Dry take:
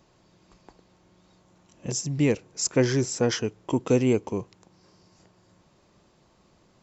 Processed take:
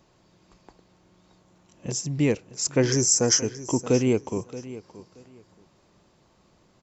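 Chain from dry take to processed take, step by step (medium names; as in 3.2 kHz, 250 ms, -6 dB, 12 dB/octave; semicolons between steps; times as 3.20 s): 2.92–3.82 s: resonant high shelf 4.7 kHz +8.5 dB, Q 3; feedback delay 626 ms, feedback 20%, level -16 dB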